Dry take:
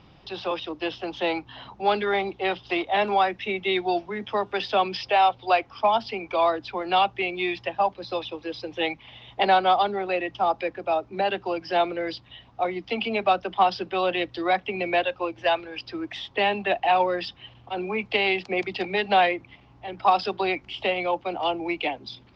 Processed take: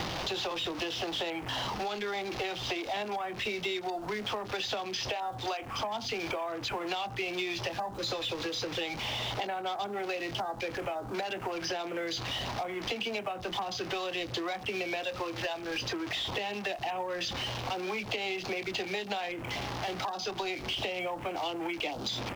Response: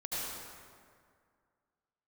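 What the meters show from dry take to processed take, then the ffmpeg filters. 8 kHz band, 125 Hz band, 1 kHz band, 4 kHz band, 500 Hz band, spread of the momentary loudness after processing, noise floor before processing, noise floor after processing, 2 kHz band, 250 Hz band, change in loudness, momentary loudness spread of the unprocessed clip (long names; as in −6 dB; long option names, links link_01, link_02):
can't be measured, +0.5 dB, −12.5 dB, −2.0 dB, −9.5 dB, 2 LU, −54 dBFS, −41 dBFS, −7.0 dB, −7.0 dB, −8.5 dB, 11 LU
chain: -filter_complex "[0:a]aeval=exprs='val(0)+0.5*0.0282*sgn(val(0))':channel_layout=same,asplit=2[link_01][link_02];[link_02]adelay=24,volume=-10.5dB[link_03];[link_01][link_03]amix=inputs=2:normalize=0,asplit=2[link_04][link_05];[1:a]atrim=start_sample=2205,atrim=end_sample=3528[link_06];[link_05][link_06]afir=irnorm=-1:irlink=0,volume=-12.5dB[link_07];[link_04][link_07]amix=inputs=2:normalize=0,acompressor=threshold=-28dB:ratio=16,asplit=2[link_08][link_09];[link_09]acrusher=bits=3:mode=log:mix=0:aa=0.000001,volume=-7.5dB[link_10];[link_08][link_10]amix=inputs=2:normalize=0,acrossover=split=420|950|3600[link_11][link_12][link_13][link_14];[link_11]acompressor=threshold=-47dB:ratio=4[link_15];[link_12]acompressor=threshold=-44dB:ratio=4[link_16];[link_13]acompressor=threshold=-45dB:ratio=4[link_17];[link_14]acompressor=threshold=-40dB:ratio=4[link_18];[link_15][link_16][link_17][link_18]amix=inputs=4:normalize=0,afwtdn=0.00501,volume=4dB"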